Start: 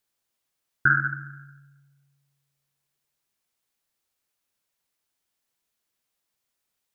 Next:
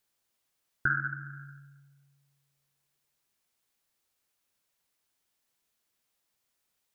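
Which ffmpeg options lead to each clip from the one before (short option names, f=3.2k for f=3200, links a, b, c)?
-af "acompressor=threshold=-42dB:ratio=1.5,volume=1dB"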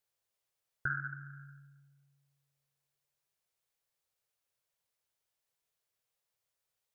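-af "equalizer=f=125:t=o:w=1:g=6,equalizer=f=250:t=o:w=1:g=-11,equalizer=f=500:t=o:w=1:g=6,volume=-7.5dB"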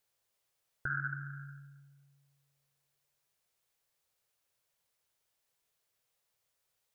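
-af "alimiter=level_in=6.5dB:limit=-24dB:level=0:latency=1:release=92,volume=-6.5dB,volume=5dB"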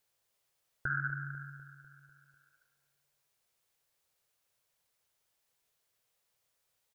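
-af "aecho=1:1:248|496|744|992|1240|1488:0.178|0.105|0.0619|0.0365|0.0215|0.0127,volume=1.5dB"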